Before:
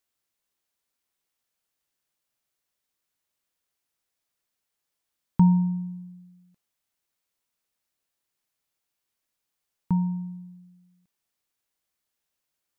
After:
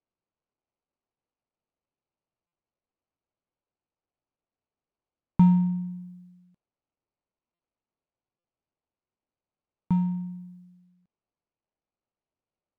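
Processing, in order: median filter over 25 samples; buffer glitch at 2.47/7.54/8.39 s, samples 256, times 8

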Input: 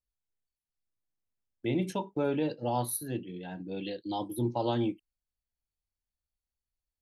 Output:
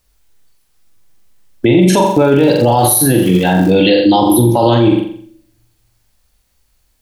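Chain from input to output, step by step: in parallel at -2 dB: compressor with a negative ratio -35 dBFS; 2.05–3.69 s: on the sum: crackle 150 per s -40 dBFS; flutter echo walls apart 7.4 m, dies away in 0.53 s; on a send at -24 dB: reverberation RT60 0.75 s, pre-delay 3 ms; on the sum: loudness maximiser +23.5 dB; trim -1 dB

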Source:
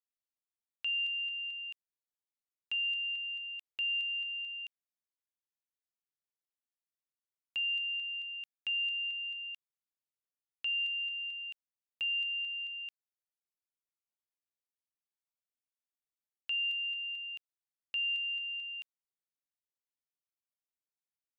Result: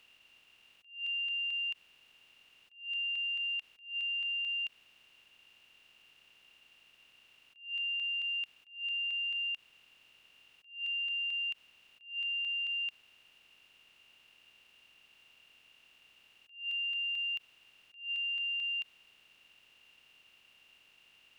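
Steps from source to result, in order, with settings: spectral levelling over time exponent 0.4; peak limiter -34.5 dBFS, peak gain reduction 7 dB; attacks held to a fixed rise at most 140 dB/s; trim +3 dB

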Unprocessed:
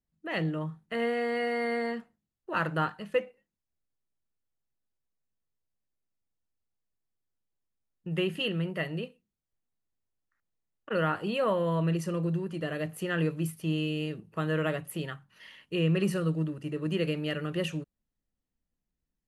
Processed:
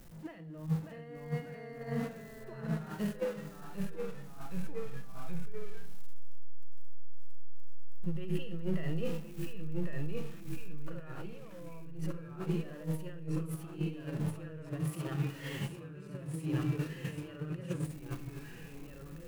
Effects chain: jump at every zero crossing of -41.5 dBFS; treble shelf 5.8 kHz +7 dB; de-hum 45.16 Hz, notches 8; compressor with a negative ratio -38 dBFS, ratio -1; ever faster or slower copies 577 ms, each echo -1 st, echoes 3; harmonic-percussive split percussive -12 dB; gate -36 dBFS, range -9 dB; treble shelf 2.6 kHz -9 dB; reverberation RT60 1.0 s, pre-delay 6 ms, DRR 12 dB; trim +2 dB

